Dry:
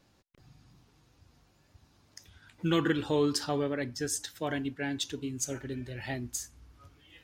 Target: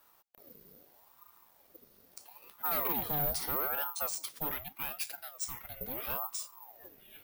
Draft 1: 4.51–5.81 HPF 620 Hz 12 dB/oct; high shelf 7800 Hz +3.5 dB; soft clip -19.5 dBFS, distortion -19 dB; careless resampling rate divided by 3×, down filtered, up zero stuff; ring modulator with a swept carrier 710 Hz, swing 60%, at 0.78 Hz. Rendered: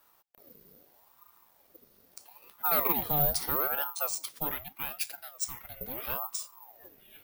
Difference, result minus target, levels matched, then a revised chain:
soft clip: distortion -11 dB
4.51–5.81 HPF 620 Hz 12 dB/oct; high shelf 7800 Hz +3.5 dB; soft clip -30.5 dBFS, distortion -7 dB; careless resampling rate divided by 3×, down filtered, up zero stuff; ring modulator with a swept carrier 710 Hz, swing 60%, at 0.78 Hz

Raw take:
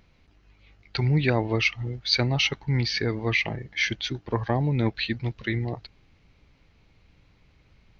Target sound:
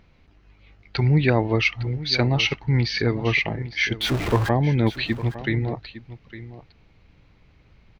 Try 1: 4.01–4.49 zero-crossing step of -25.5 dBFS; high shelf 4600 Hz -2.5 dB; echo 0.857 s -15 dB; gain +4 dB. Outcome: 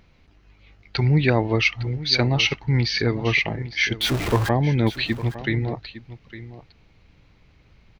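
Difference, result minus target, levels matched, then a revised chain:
8000 Hz band +3.5 dB
4.01–4.49 zero-crossing step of -25.5 dBFS; high shelf 4600 Hz -8.5 dB; echo 0.857 s -15 dB; gain +4 dB

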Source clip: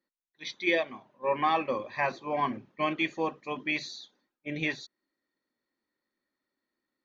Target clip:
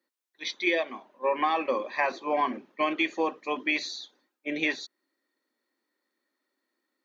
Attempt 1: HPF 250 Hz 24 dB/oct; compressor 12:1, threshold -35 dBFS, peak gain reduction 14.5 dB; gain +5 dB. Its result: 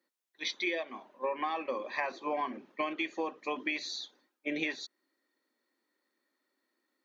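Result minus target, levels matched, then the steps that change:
compressor: peak gain reduction +8 dB
change: compressor 12:1, threshold -26 dBFS, peak gain reduction 6 dB

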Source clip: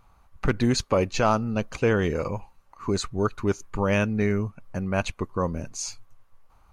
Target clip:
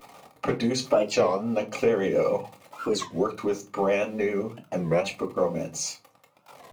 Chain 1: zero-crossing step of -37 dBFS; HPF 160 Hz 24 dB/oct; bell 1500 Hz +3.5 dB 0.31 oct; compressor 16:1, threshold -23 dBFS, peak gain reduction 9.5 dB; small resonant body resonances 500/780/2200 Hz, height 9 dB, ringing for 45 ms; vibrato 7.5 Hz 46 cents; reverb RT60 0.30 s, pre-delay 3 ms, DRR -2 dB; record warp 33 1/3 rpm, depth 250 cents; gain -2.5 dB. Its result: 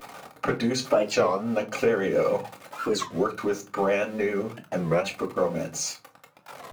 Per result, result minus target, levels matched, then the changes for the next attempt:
zero-crossing step: distortion +6 dB; 2000 Hz band +2.5 dB
change: zero-crossing step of -43 dBFS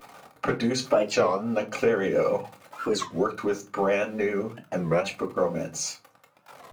2000 Hz band +2.5 dB
change: bell 1500 Hz -7.5 dB 0.31 oct

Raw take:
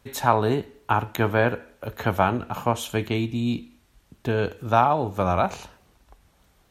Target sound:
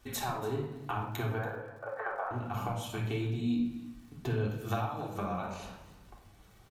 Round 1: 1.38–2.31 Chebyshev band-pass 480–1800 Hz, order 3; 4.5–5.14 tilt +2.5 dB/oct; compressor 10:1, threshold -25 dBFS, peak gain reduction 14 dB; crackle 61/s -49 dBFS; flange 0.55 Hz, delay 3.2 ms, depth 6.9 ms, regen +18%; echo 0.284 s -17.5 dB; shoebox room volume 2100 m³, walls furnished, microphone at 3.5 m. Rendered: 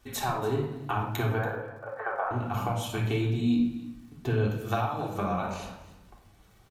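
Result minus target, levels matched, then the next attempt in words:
compressor: peak gain reduction -6 dB
1.38–2.31 Chebyshev band-pass 480–1800 Hz, order 3; 4.5–5.14 tilt +2.5 dB/oct; compressor 10:1, threshold -31.5 dBFS, peak gain reduction 19.5 dB; crackle 61/s -49 dBFS; flange 0.55 Hz, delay 3.2 ms, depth 6.9 ms, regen +18%; echo 0.284 s -17.5 dB; shoebox room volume 2100 m³, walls furnished, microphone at 3.5 m

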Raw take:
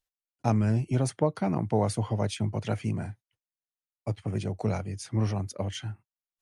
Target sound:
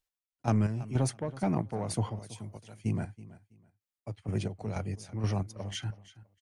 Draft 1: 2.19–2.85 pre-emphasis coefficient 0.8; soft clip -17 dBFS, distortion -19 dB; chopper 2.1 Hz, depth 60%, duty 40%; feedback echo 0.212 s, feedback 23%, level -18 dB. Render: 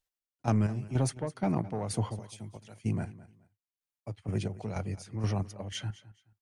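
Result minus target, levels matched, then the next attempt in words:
echo 0.115 s early
2.19–2.85 pre-emphasis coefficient 0.8; soft clip -17 dBFS, distortion -19 dB; chopper 2.1 Hz, depth 60%, duty 40%; feedback echo 0.327 s, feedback 23%, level -18 dB

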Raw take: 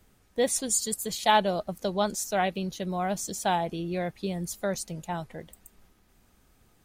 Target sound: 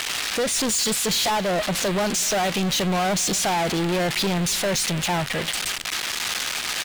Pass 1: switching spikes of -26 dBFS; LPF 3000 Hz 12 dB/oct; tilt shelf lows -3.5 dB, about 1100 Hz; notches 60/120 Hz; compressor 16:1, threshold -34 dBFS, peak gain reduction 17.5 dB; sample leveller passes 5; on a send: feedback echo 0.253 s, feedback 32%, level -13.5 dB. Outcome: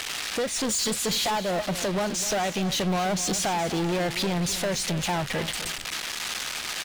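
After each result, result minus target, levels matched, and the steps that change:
compressor: peak gain reduction +6.5 dB; echo-to-direct +9 dB; switching spikes: distortion -7 dB
change: compressor 16:1, threshold -27 dBFS, peak gain reduction 11 dB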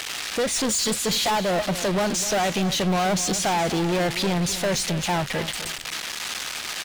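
echo-to-direct +9 dB; switching spikes: distortion -7 dB
change: feedback echo 0.253 s, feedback 32%, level -22.5 dB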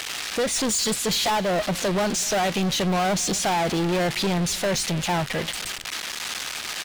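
switching spikes: distortion -7 dB
change: switching spikes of -18.5 dBFS

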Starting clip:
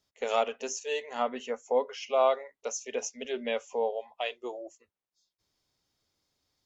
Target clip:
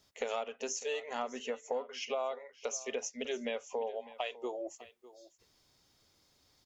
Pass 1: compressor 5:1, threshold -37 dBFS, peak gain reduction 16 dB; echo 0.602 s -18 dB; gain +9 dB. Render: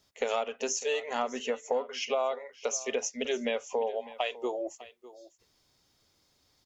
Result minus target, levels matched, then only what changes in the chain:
compressor: peak gain reduction -6 dB
change: compressor 5:1, threshold -44.5 dBFS, peak gain reduction 22 dB

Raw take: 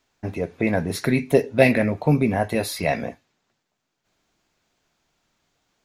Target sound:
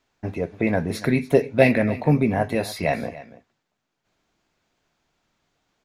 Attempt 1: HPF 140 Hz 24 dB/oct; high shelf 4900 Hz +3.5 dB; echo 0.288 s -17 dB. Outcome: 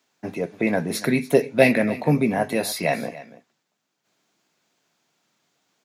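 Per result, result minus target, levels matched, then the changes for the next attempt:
8000 Hz band +7.5 dB; 125 Hz band -3.5 dB
change: high shelf 4900 Hz -6.5 dB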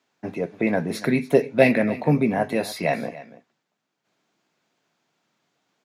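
125 Hz band -3.0 dB
remove: HPF 140 Hz 24 dB/oct

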